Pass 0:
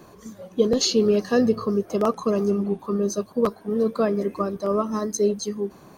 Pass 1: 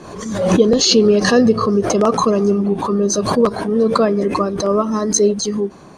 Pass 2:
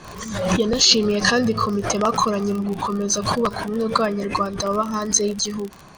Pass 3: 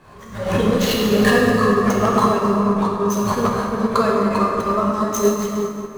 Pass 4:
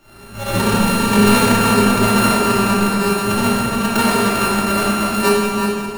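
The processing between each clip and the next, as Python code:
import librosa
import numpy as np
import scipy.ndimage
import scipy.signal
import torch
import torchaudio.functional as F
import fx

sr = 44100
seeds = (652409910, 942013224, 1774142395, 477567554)

y1 = scipy.signal.sosfilt(scipy.signal.butter(4, 9200.0, 'lowpass', fs=sr, output='sos'), x)
y1 = fx.hum_notches(y1, sr, base_hz=60, count=2)
y1 = fx.pre_swell(y1, sr, db_per_s=50.0)
y1 = y1 * librosa.db_to_amplitude(6.5)
y2 = fx.high_shelf(y1, sr, hz=7100.0, db=-8.0)
y2 = fx.dmg_crackle(y2, sr, seeds[0], per_s=45.0, level_db=-26.0)
y2 = fx.peak_eq(y2, sr, hz=340.0, db=-13.0, octaves=2.4)
y2 = y2 * librosa.db_to_amplitude(3.0)
y3 = scipy.signal.medfilt(y2, 9)
y3 = fx.rev_plate(y3, sr, seeds[1], rt60_s=3.7, hf_ratio=0.5, predelay_ms=0, drr_db=-4.0)
y3 = fx.upward_expand(y3, sr, threshold_db=-28.0, expansion=1.5)
y4 = np.r_[np.sort(y3[:len(y3) // 32 * 32].reshape(-1, 32), axis=1).ravel(), y3[len(y3) // 32 * 32:]]
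y4 = fx.room_shoebox(y4, sr, seeds[2], volume_m3=1200.0, walls='mixed', distance_m=2.6)
y4 = y4 * librosa.db_to_amplitude(-3.5)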